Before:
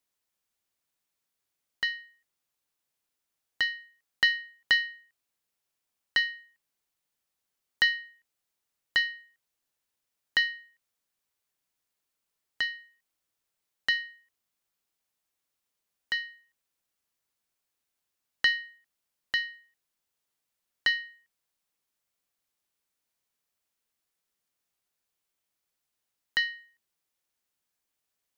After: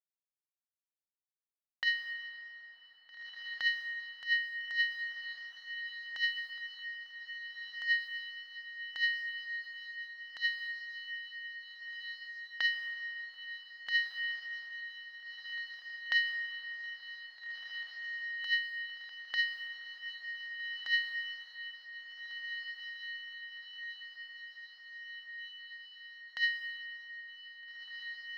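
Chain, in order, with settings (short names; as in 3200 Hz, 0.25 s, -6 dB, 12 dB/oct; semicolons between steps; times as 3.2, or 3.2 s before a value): HPF 700 Hz 24 dB/oct; expander -51 dBFS; negative-ratio compressor -30 dBFS, ratio -0.5; diffused feedback echo 1.71 s, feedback 69%, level -7 dB; on a send at -8.5 dB: reverb RT60 5.3 s, pre-delay 0.113 s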